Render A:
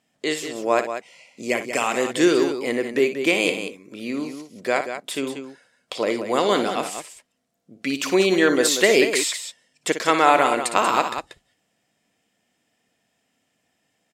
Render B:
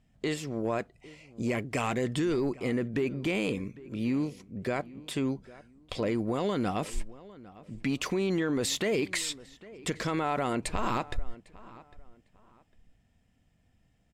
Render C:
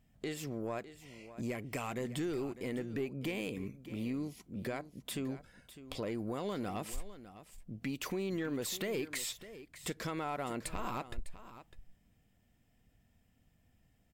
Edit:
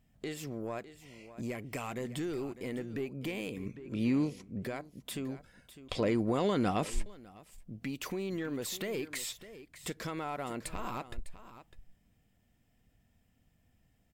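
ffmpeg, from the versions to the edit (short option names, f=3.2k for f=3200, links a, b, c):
-filter_complex "[1:a]asplit=2[a][b];[2:a]asplit=3[c][d][e];[c]atrim=end=3.662[f];[a]atrim=start=3.658:end=4.642[g];[d]atrim=start=4.638:end=5.882[h];[b]atrim=start=5.878:end=7.062[i];[e]atrim=start=7.058[j];[f][g]acrossfade=d=0.004:c1=hsin:c2=hsin[k];[k][h]acrossfade=d=0.004:c1=hsin:c2=hsin[l];[l][i]acrossfade=d=0.004:c1=hsin:c2=hsin[m];[m][j]acrossfade=d=0.004:c1=hsin:c2=hsin"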